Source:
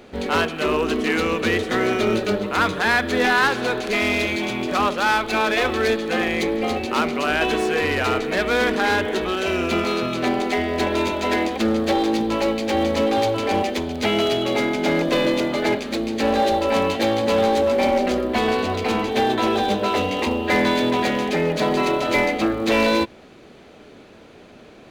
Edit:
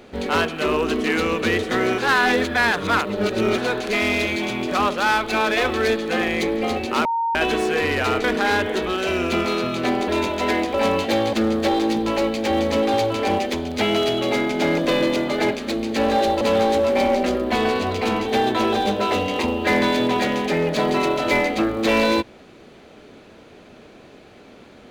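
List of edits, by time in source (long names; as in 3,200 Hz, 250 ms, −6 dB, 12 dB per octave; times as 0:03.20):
0:01.98–0:03.58: reverse
0:07.05–0:07.35: beep over 921 Hz −19 dBFS
0:08.24–0:08.63: remove
0:10.47–0:10.91: remove
0:16.65–0:17.24: move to 0:11.57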